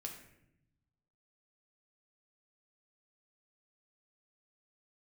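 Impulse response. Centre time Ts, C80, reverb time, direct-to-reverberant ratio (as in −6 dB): 25 ms, 9.5 dB, 0.80 s, 1.0 dB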